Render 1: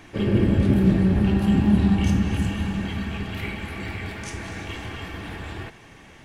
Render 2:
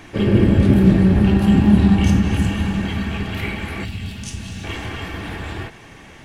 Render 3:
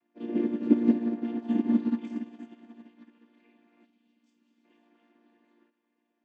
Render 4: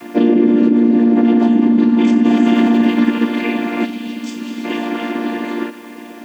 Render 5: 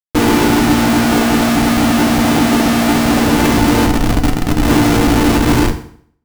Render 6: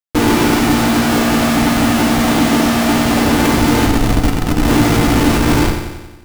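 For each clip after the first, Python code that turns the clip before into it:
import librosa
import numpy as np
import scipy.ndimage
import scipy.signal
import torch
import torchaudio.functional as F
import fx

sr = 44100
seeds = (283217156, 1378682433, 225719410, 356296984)

y1 = fx.spec_box(x, sr, start_s=3.85, length_s=0.79, low_hz=260.0, high_hz=2500.0, gain_db=-12)
y1 = fx.end_taper(y1, sr, db_per_s=220.0)
y1 = y1 * 10.0 ** (5.5 / 20.0)
y2 = fx.chord_vocoder(y1, sr, chord='major triad', root=58)
y2 = fx.upward_expand(y2, sr, threshold_db=-28.0, expansion=2.5)
y2 = y2 * 10.0 ** (-5.5 / 20.0)
y3 = fx.env_flatten(y2, sr, amount_pct=100)
y3 = y3 * 10.0 ** (4.5 / 20.0)
y4 = fx.schmitt(y3, sr, flips_db=-19.5)
y4 = fx.rev_fdn(y4, sr, rt60_s=0.57, lf_ratio=1.05, hf_ratio=0.9, size_ms=20.0, drr_db=3.5)
y4 = y4 * 10.0 ** (2.0 / 20.0)
y5 = fx.echo_feedback(y4, sr, ms=91, feedback_pct=59, wet_db=-8)
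y5 = y5 * 10.0 ** (-1.0 / 20.0)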